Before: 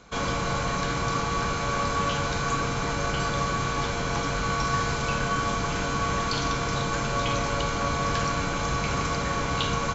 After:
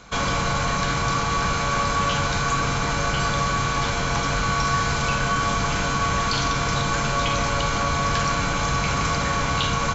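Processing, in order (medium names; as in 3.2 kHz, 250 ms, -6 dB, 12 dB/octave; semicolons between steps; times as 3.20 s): de-hum 57.76 Hz, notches 9; in parallel at +2 dB: peak limiter -21.5 dBFS, peak gain reduction 9 dB; on the sum: peaking EQ 380 Hz -4.5 dB 1.5 oct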